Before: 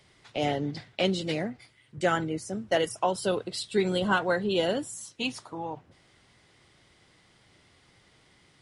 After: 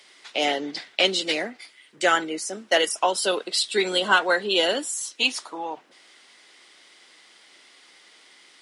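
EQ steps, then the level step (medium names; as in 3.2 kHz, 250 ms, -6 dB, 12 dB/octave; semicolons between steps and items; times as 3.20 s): high-pass 260 Hz 24 dB/octave; tilt shelf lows -6 dB, about 1.2 kHz; treble shelf 9.6 kHz -5 dB; +7.0 dB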